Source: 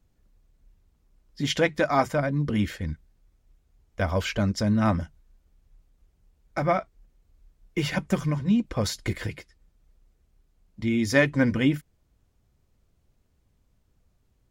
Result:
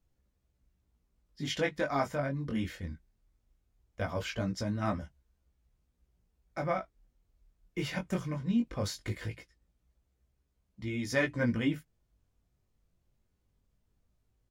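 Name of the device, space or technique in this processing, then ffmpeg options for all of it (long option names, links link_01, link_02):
double-tracked vocal: -filter_complex "[0:a]asplit=2[link_01][link_02];[link_02]adelay=17,volume=-14dB[link_03];[link_01][link_03]amix=inputs=2:normalize=0,flanger=delay=15:depth=7.6:speed=0.19,volume=-5dB"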